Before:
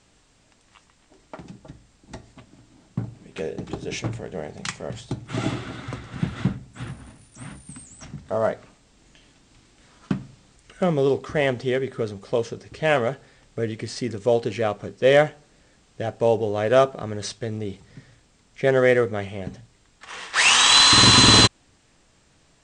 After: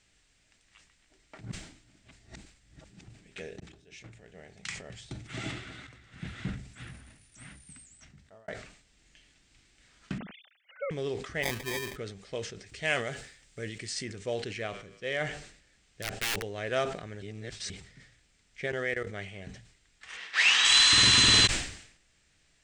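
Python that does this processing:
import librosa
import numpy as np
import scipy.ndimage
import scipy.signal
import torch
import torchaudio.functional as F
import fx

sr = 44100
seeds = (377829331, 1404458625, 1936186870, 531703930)

y = fx.sine_speech(x, sr, at=(10.18, 10.91))
y = fx.sample_hold(y, sr, seeds[0], rate_hz=1400.0, jitter_pct=0, at=(11.42, 11.95), fade=0.02)
y = fx.high_shelf(y, sr, hz=6400.0, db=12.0, at=(12.66, 14.04))
y = fx.comb_fb(y, sr, f0_hz=54.0, decay_s=1.6, harmonics='odd', damping=0.0, mix_pct=50, at=(14.66, 15.2), fade=0.02)
y = fx.overflow_wrap(y, sr, gain_db=18.0, at=(16.02, 16.43))
y = fx.level_steps(y, sr, step_db=20, at=(18.66, 19.07))
y = fx.bandpass_edges(y, sr, low_hz=160.0, high_hz=5100.0, at=(20.17, 20.65))
y = fx.edit(y, sr, fx.reverse_span(start_s=1.41, length_s=1.67),
    fx.fade_in_span(start_s=3.6, length_s=1.56),
    fx.fade_in_from(start_s=5.87, length_s=0.67, floor_db=-14.5),
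    fx.fade_out_span(start_s=7.63, length_s=0.85),
    fx.reverse_span(start_s=17.22, length_s=0.48), tone=tone)
y = fx.graphic_eq(y, sr, hz=(125, 250, 500, 1000, 2000), db=(-5, -6, -5, -9, 5))
y = fx.sustainer(y, sr, db_per_s=85.0)
y = y * 10.0 ** (-6.5 / 20.0)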